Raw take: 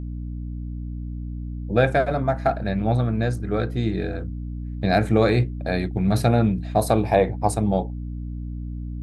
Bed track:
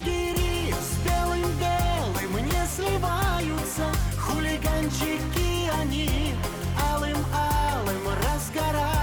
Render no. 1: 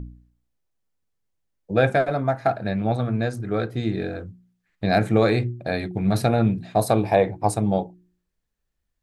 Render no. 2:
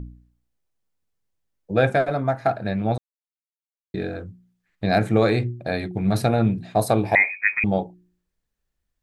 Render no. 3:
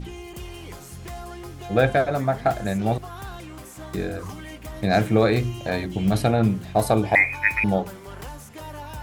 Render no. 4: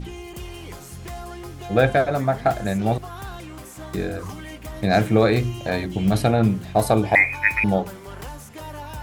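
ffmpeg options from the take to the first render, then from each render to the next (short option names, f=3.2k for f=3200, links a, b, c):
-af "bandreject=f=60:t=h:w=4,bandreject=f=120:t=h:w=4,bandreject=f=180:t=h:w=4,bandreject=f=240:t=h:w=4,bandreject=f=300:t=h:w=4,bandreject=f=360:t=h:w=4"
-filter_complex "[0:a]asettb=1/sr,asplit=3[a][b][c];[a]atrim=end=7.154[d];[b]atrim=start=7.15:end=7.64,asetpts=PTS-STARTPTS,afade=t=in:d=0.004:c=qsin,afade=t=out:st=0.486:d=0.004:c=qsin,lowpass=f=2.2k:t=q:w=0.5098,lowpass=f=2.2k:t=q:w=0.6013,lowpass=f=2.2k:t=q:w=0.9,lowpass=f=2.2k:t=q:w=2.563,afreqshift=-2600[e];[c]atrim=start=7.636[f];[d][e]acrossfade=d=0.004:c1=hsin:c2=qsin[g];[g][f]acrossfade=d=0.004:c1=qsin:c2=hsin,asplit=3[h][i][j];[h]atrim=end=2.98,asetpts=PTS-STARTPTS,afade=t=out:st=2.976:d=0.004:c=hsin[k];[i]atrim=start=2.98:end=3.94,asetpts=PTS-STARTPTS,volume=0[l];[j]atrim=start=3.94,asetpts=PTS-STARTPTS,afade=t=in:d=0.004:c=hsin[m];[k][l][m]concat=n=3:v=0:a=1"
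-filter_complex "[1:a]volume=-12dB[a];[0:a][a]amix=inputs=2:normalize=0"
-af "volume=1.5dB"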